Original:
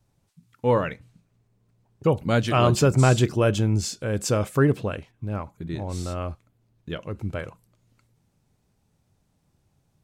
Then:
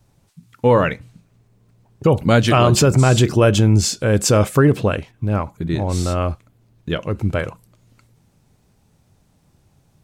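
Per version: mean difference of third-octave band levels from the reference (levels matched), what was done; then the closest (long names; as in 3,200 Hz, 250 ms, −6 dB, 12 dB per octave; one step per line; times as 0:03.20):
2.0 dB: boost into a limiter +13.5 dB
level −3.5 dB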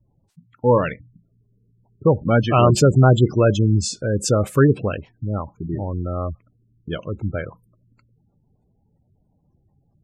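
6.0 dB: gate on every frequency bin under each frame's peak −20 dB strong
level +5 dB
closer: first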